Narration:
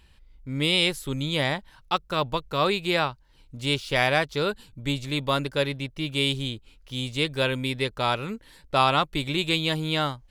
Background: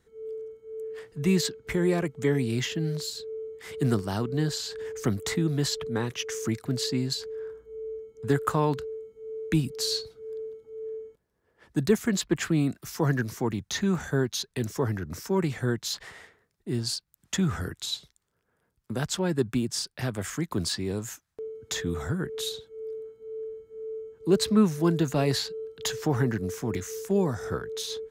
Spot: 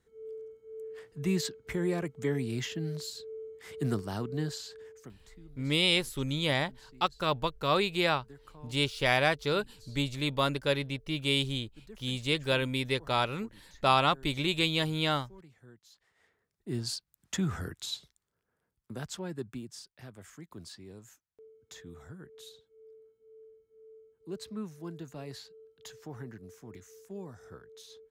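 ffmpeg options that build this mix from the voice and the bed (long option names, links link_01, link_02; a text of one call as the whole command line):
ffmpeg -i stem1.wav -i stem2.wav -filter_complex "[0:a]adelay=5100,volume=-3.5dB[link_01];[1:a]volume=17dB,afade=type=out:start_time=4.39:duration=0.74:silence=0.0794328,afade=type=in:start_time=16.15:duration=0.55:silence=0.0707946,afade=type=out:start_time=17.94:duration=1.97:silence=0.223872[link_02];[link_01][link_02]amix=inputs=2:normalize=0" out.wav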